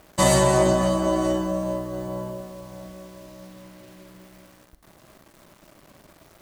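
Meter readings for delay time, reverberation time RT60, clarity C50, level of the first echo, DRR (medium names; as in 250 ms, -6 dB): no echo, 0.60 s, 11.0 dB, no echo, 9.0 dB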